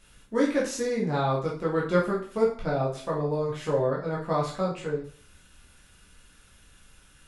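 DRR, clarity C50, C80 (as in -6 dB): -5.0 dB, 6.5 dB, 11.5 dB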